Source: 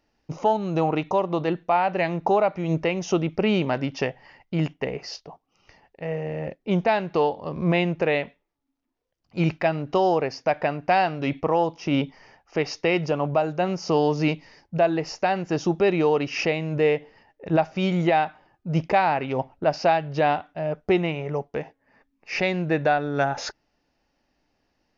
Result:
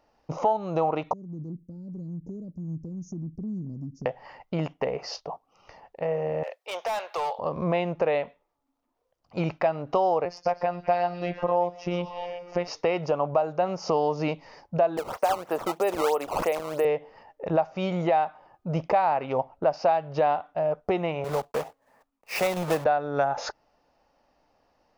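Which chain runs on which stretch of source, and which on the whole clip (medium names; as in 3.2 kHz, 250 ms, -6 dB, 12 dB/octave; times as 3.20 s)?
1.13–4.06 s: inverse Chebyshev band-stop 690–3300 Hz, stop band 60 dB + compression 2:1, threshold -36 dBFS
6.43–7.39 s: high-pass 510 Hz 24 dB/octave + tilt shelf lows -8 dB, about 1.4 kHz + overload inside the chain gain 30.5 dB
10.25–12.68 s: bass shelf 120 Hz +9 dB + robot voice 176 Hz + repeats whose band climbs or falls 123 ms, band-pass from 5.9 kHz, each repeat -0.7 oct, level -7.5 dB
14.97–16.85 s: high-pass 340 Hz + decimation with a swept rate 15×, swing 160% 3.1 Hz
21.24–22.86 s: block-companded coder 3-bit + three bands expanded up and down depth 40%
whole clip: high-order bell 780 Hz +9 dB; compression 2:1, threshold -28 dBFS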